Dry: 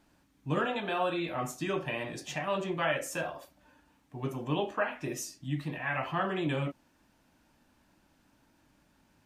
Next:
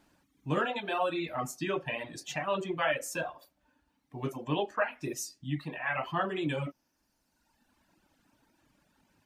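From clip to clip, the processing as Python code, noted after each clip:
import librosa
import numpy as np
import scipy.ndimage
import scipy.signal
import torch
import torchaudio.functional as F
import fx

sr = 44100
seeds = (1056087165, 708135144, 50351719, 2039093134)

y = fx.dereverb_blind(x, sr, rt60_s=1.5)
y = fx.low_shelf(y, sr, hz=140.0, db=-4.0)
y = F.gain(torch.from_numpy(y), 1.5).numpy()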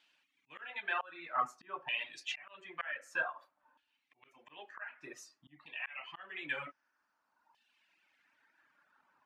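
y = fx.auto_swell(x, sr, attack_ms=401.0)
y = fx.filter_lfo_bandpass(y, sr, shape='saw_down', hz=0.53, low_hz=990.0, high_hz=3100.0, q=3.0)
y = F.gain(torch.from_numpy(y), 8.0).numpy()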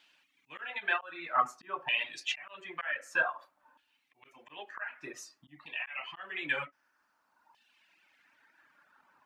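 y = fx.end_taper(x, sr, db_per_s=360.0)
y = F.gain(torch.from_numpy(y), 6.0).numpy()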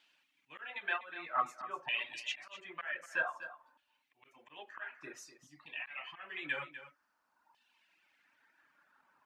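y = x + 10.0 ** (-13.0 / 20.0) * np.pad(x, (int(248 * sr / 1000.0), 0))[:len(x)]
y = F.gain(torch.from_numpy(y), -5.0).numpy()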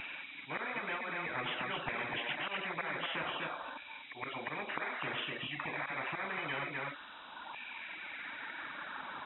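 y = fx.freq_compress(x, sr, knee_hz=2200.0, ratio=4.0)
y = fx.spectral_comp(y, sr, ratio=10.0)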